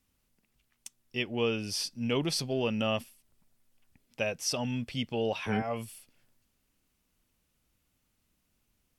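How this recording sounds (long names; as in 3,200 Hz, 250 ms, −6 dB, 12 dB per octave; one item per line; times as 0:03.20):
background noise floor −77 dBFS
spectral slope −4.0 dB per octave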